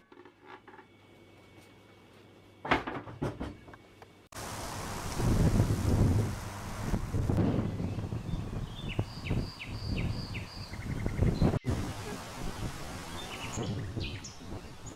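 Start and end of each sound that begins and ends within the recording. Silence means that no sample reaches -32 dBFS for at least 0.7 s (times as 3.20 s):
2.65–3.47 s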